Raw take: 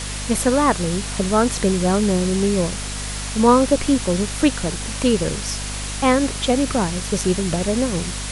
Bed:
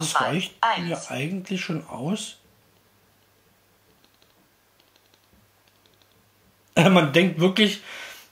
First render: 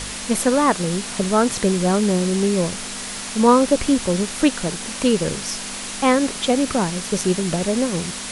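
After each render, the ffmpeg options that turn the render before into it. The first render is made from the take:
-af "bandreject=f=50:t=h:w=4,bandreject=f=100:t=h:w=4,bandreject=f=150:t=h:w=4"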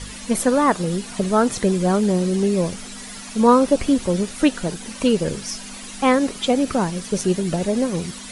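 -af "afftdn=nr=11:nf=-31"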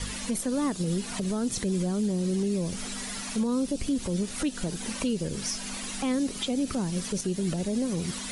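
-filter_complex "[0:a]acrossover=split=360|3000[a][b][c];[b]acompressor=threshold=-31dB:ratio=6[d];[a][d][c]amix=inputs=3:normalize=0,alimiter=limit=-20dB:level=0:latency=1:release=172"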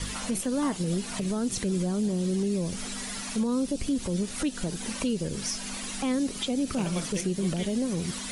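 -filter_complex "[1:a]volume=-20.5dB[a];[0:a][a]amix=inputs=2:normalize=0"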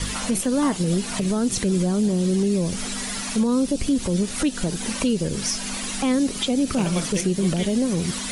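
-af "volume=6.5dB"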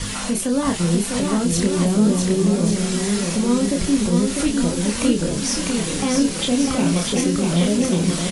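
-filter_complex "[0:a]asplit=2[a][b];[b]adelay=29,volume=-4.5dB[c];[a][c]amix=inputs=2:normalize=0,aecho=1:1:650|1138|1503|1777|1983:0.631|0.398|0.251|0.158|0.1"

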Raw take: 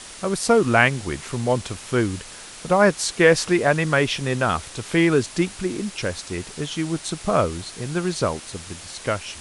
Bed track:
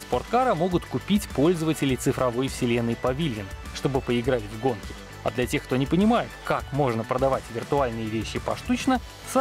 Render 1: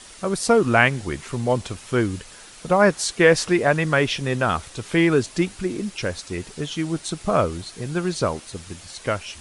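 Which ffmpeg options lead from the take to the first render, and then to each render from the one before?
-af "afftdn=nr=6:nf=-40"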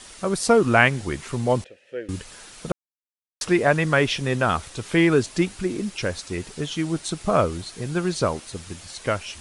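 -filter_complex "[0:a]asettb=1/sr,asplit=3[a][b][c];[a]atrim=end=1.644[d];[b]atrim=start=1.64:end=2.09,asetpts=PTS-STARTPTS,afade=t=in:d=0.004:c=qsin,afade=t=out:st=0.446:d=0.004:c=qsin,asplit=3[e][f][g];[e]bandpass=f=530:t=q:w=8,volume=0dB[h];[f]bandpass=f=1.84k:t=q:w=8,volume=-6dB[i];[g]bandpass=f=2.48k:t=q:w=8,volume=-9dB[j];[h][i][j]amix=inputs=3:normalize=0[k];[c]atrim=start=2.086[l];[d][k]acrossfade=d=0.004:c1=hsin:c2=qsin[m];[m][l]acrossfade=d=0.004:c1=qsin:c2=hsin,asplit=3[n][o][p];[n]atrim=end=2.72,asetpts=PTS-STARTPTS,afade=t=out:st=2.716:d=0.004:c=hsin[q];[o]atrim=start=2.72:end=3.41,asetpts=PTS-STARTPTS,volume=0[r];[p]atrim=start=3.41,asetpts=PTS-STARTPTS,afade=t=in:d=0.004:c=hsin[s];[q][r][s]concat=n=3:v=0:a=1"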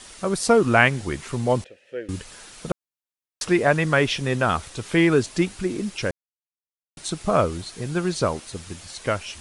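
-filter_complex "[0:a]asplit=3[a][b][c];[a]atrim=end=6.11,asetpts=PTS-STARTPTS,afade=t=out:st=6.106:d=0.004:c=hsin[d];[b]atrim=start=6.11:end=6.97,asetpts=PTS-STARTPTS,volume=0[e];[c]atrim=start=6.97,asetpts=PTS-STARTPTS,afade=t=in:d=0.004:c=hsin[f];[d][e][f]concat=n=3:v=0:a=1"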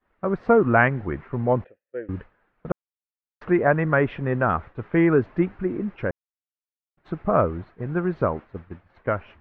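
-af "agate=range=-33dB:threshold=-31dB:ratio=3:detection=peak,lowpass=f=1.8k:w=0.5412,lowpass=f=1.8k:w=1.3066"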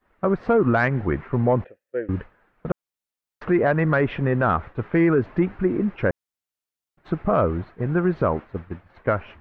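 -af "acontrast=30,alimiter=limit=-10.5dB:level=0:latency=1:release=98"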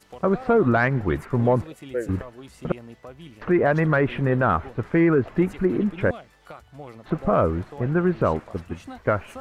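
-filter_complex "[1:a]volume=-17dB[a];[0:a][a]amix=inputs=2:normalize=0"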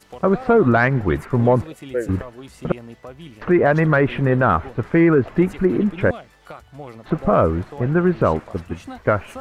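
-af "volume=4dB"

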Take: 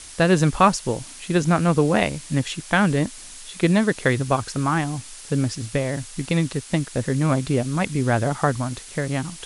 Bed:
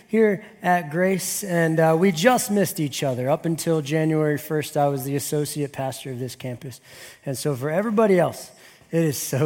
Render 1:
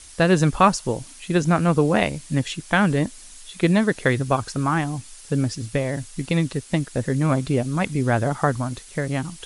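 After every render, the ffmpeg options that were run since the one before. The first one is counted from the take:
-af "afftdn=nr=6:nf=-41"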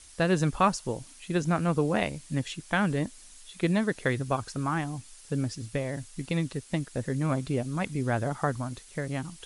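-af "volume=-7.5dB"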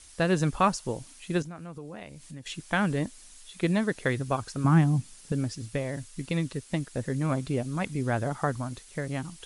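-filter_complex "[0:a]asettb=1/sr,asplit=3[a][b][c];[a]atrim=end=1.424[d];[b]atrim=start=1.42:end=2.46,asetpts=PTS-STARTPTS,afade=t=in:d=0.004:c=qsin,afade=t=out:st=1.036:d=0.004:c=qsin,acompressor=threshold=-43dB:ratio=3:attack=3.2:release=140:knee=1:detection=peak[e];[c]atrim=start=2.456[f];[d][e]acrossfade=d=0.004:c1=hsin:c2=qsin[g];[g][f]acrossfade=d=0.004:c1=qsin:c2=hsin,asettb=1/sr,asplit=3[h][i][j];[h]atrim=end=4.644[k];[i]atrim=start=4.64:end=5.32,asetpts=PTS-STARTPTS,afade=t=in:d=0.004:c=qsin,afade=t=out:st=0.676:d=0.004:c=qsin,equalizer=f=170:t=o:w=1.7:g=13.5[l];[j]atrim=start=5.316[m];[k][l]acrossfade=d=0.004:c1=hsin:c2=qsin[n];[n][m]acrossfade=d=0.004:c1=qsin:c2=hsin,asettb=1/sr,asplit=3[o][p][q];[o]atrim=end=5.924[r];[p]atrim=start=5.92:end=6.66,asetpts=PTS-STARTPTS,afade=t=in:d=0.004:c=qsin,afade=t=out:st=0.736:d=0.004:c=qsin,bandreject=f=770:w=7.6[s];[q]atrim=start=6.656[t];[r][s]acrossfade=d=0.004:c1=hsin:c2=qsin[u];[u][t]acrossfade=d=0.004:c1=qsin:c2=hsin"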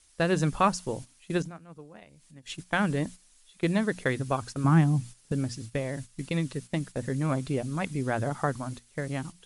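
-af "bandreject=f=60:t=h:w=6,bandreject=f=120:t=h:w=6,bandreject=f=180:t=h:w=6,bandreject=f=240:t=h:w=6,agate=range=-10dB:threshold=-39dB:ratio=16:detection=peak"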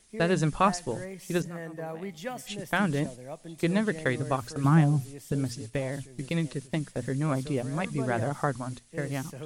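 -filter_complex "[1:a]volume=-19.5dB[a];[0:a][a]amix=inputs=2:normalize=0"

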